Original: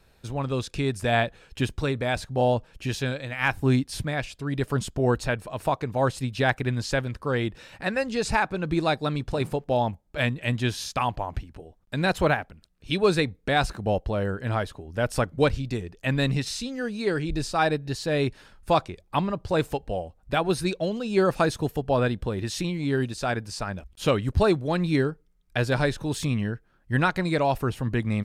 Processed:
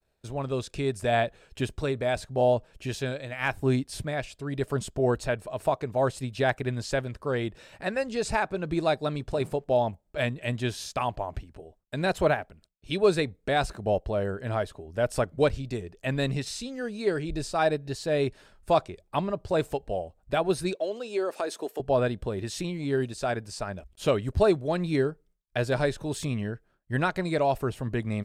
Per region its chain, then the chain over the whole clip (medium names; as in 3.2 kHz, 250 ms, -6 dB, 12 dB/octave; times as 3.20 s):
20.75–21.80 s: high-pass 300 Hz 24 dB/octave + compression 3:1, threshold -25 dBFS
whole clip: expander -50 dBFS; graphic EQ with 31 bands 400 Hz +5 dB, 630 Hz +7 dB, 8 kHz +4 dB; trim -4.5 dB